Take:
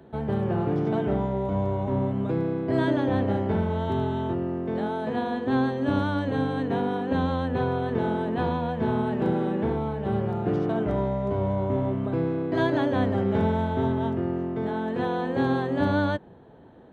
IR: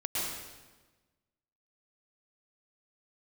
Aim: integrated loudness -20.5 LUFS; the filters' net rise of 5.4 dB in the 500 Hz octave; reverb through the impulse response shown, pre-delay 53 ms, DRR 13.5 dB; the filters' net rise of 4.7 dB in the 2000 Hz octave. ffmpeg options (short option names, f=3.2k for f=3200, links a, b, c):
-filter_complex "[0:a]equalizer=f=500:t=o:g=6.5,equalizer=f=2k:t=o:g=6,asplit=2[a][b];[1:a]atrim=start_sample=2205,adelay=53[c];[b][c]afir=irnorm=-1:irlink=0,volume=-20dB[d];[a][d]amix=inputs=2:normalize=0,volume=2.5dB"